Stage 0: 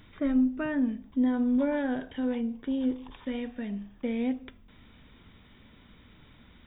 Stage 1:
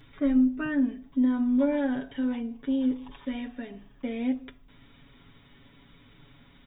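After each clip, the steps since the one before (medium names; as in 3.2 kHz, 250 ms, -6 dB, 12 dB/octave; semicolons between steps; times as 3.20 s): comb 7.2 ms, depth 88%; trim -2 dB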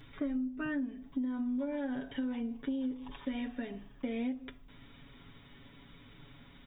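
compression 10:1, threshold -32 dBFS, peak gain reduction 14 dB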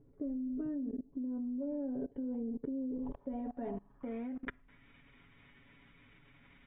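level held to a coarse grid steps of 23 dB; low-pass sweep 450 Hz -> 2.3 kHz, 2.88–4.86 s; trim +6 dB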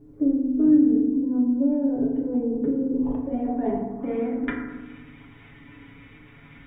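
FDN reverb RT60 1.2 s, low-frequency decay 1.35×, high-frequency decay 0.35×, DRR -3.5 dB; trim +8 dB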